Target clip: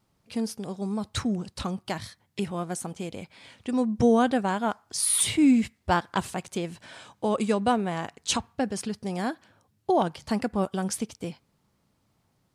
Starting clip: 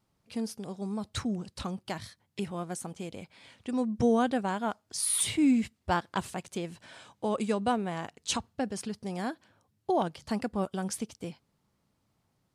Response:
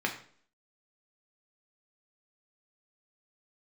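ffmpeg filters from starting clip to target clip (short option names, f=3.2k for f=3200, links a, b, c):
-filter_complex "[0:a]asplit=2[a][b];[b]highpass=1.1k[c];[1:a]atrim=start_sample=2205,lowpass=1.8k,adelay=9[d];[c][d]afir=irnorm=-1:irlink=0,volume=-23.5dB[e];[a][e]amix=inputs=2:normalize=0,volume=4.5dB"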